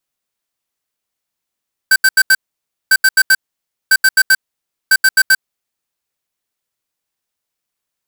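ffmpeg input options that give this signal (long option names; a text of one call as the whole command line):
ffmpeg -f lavfi -i "aevalsrc='0.376*(2*lt(mod(1550*t,1),0.5)-1)*clip(min(mod(mod(t,1),0.13),0.05-mod(mod(t,1),0.13))/0.005,0,1)*lt(mod(t,1),0.52)':duration=4:sample_rate=44100" out.wav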